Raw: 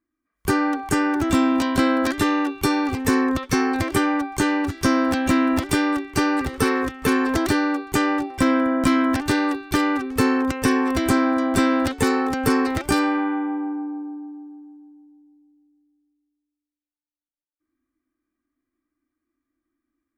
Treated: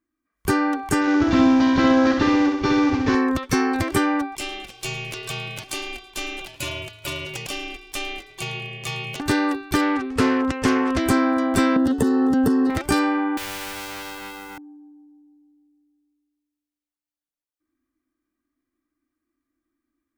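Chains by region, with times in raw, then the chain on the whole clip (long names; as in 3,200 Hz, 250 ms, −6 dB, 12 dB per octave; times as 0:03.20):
0:01.01–0:03.15: variable-slope delta modulation 32 kbit/s + flutter between parallel walls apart 11.1 metres, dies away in 0.77 s
0:04.35–0:09.20: high-pass filter 1,100 Hz 24 dB per octave + ring modulation 1,200 Hz + repeating echo 109 ms, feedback 55%, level −21 dB
0:09.81–0:11.01: low-pass filter 8,100 Hz + highs frequency-modulated by the lows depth 0.26 ms
0:11.76–0:12.70: parametric band 240 Hz +14.5 dB 2 octaves + downward compressor 12 to 1, threshold −15 dBFS + Butterworth band-reject 2,300 Hz, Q 3.4
0:13.37–0:14.58: mu-law and A-law mismatch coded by mu + every bin compressed towards the loudest bin 10 to 1
whole clip: no processing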